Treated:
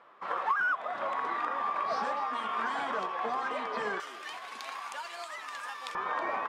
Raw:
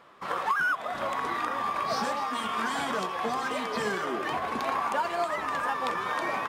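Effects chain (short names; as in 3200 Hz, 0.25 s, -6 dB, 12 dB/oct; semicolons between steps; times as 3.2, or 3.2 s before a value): band-pass 1000 Hz, Q 0.57, from 4 s 5700 Hz, from 5.95 s 870 Hz; gain -1.5 dB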